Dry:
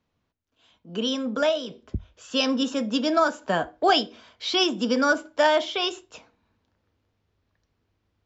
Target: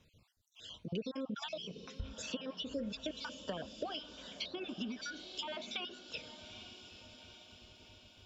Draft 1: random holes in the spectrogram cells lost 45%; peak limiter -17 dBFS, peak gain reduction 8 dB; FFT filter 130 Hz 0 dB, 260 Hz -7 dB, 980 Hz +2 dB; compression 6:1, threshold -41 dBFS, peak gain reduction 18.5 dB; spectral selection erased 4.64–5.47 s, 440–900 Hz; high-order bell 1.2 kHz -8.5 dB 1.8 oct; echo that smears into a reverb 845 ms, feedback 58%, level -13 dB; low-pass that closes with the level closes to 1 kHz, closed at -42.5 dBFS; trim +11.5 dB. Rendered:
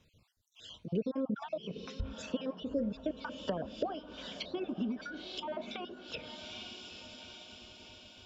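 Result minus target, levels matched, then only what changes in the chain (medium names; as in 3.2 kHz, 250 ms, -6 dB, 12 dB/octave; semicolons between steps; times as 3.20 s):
compression: peak gain reduction -6 dB
change: compression 6:1, threshold -48.5 dBFS, peak gain reduction 25 dB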